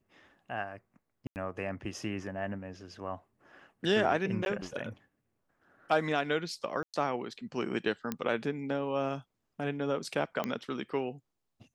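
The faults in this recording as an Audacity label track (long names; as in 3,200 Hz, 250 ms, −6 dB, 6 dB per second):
1.270000	1.360000	drop-out 89 ms
4.450000	4.460000	drop-out 11 ms
6.830000	6.940000	drop-out 107 ms
8.120000	8.120000	click −18 dBFS
10.440000	10.440000	click −19 dBFS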